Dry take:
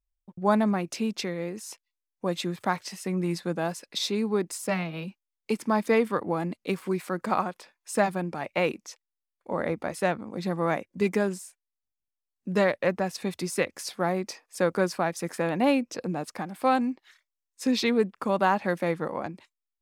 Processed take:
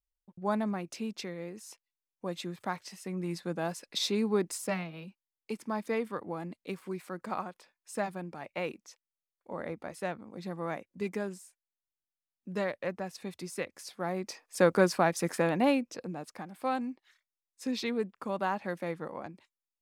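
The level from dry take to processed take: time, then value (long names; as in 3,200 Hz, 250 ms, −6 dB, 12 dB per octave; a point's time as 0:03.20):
0:03.12 −8 dB
0:04.01 −2 dB
0:04.56 −2 dB
0:04.97 −9.5 dB
0:13.94 −9.5 dB
0:14.61 +1 dB
0:15.33 +1 dB
0:16.12 −8.5 dB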